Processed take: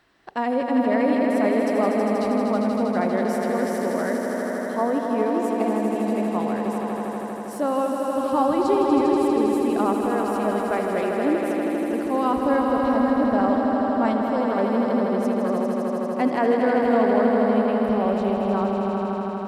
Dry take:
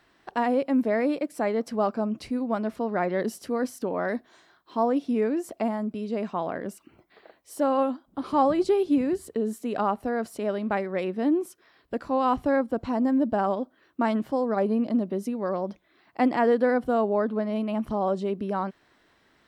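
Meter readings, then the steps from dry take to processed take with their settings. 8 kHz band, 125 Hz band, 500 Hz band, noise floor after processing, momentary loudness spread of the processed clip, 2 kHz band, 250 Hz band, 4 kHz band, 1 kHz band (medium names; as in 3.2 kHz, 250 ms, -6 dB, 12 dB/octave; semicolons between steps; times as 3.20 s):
+5.0 dB, +5.0 dB, +5.0 dB, -29 dBFS, 6 LU, +5.0 dB, +5.0 dB, +5.0 dB, +5.0 dB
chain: echo with a slow build-up 80 ms, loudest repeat 5, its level -6.5 dB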